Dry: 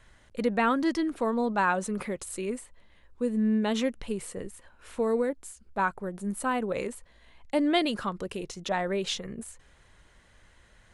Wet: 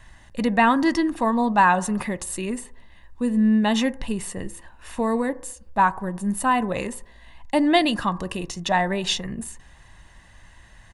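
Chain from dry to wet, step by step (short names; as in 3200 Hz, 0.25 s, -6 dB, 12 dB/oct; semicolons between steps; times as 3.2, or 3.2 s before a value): comb 1.1 ms, depth 54%; on a send: reverb RT60 0.70 s, pre-delay 3 ms, DRR 15.5 dB; on the sum: gain +6.5 dB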